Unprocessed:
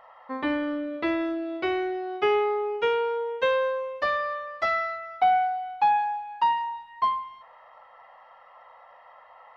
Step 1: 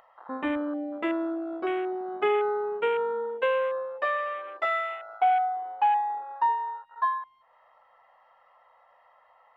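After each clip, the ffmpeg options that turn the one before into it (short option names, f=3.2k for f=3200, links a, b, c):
-af "acompressor=mode=upward:threshold=-32dB:ratio=2.5,afwtdn=0.0251,volume=-1.5dB"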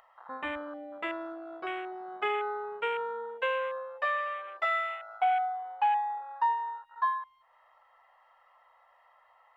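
-af "equalizer=f=270:w=0.7:g=-14"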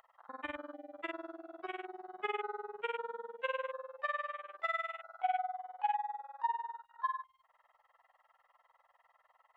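-af "tremolo=f=20:d=0.947,volume=-3dB"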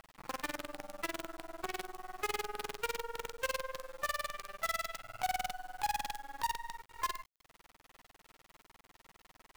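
-af "acompressor=threshold=-49dB:ratio=2.5,acrusher=bits=8:dc=4:mix=0:aa=0.000001,volume=10dB"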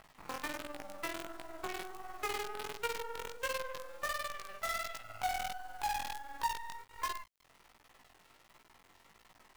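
-af "flanger=delay=17:depth=5.4:speed=1.4,volume=2.5dB"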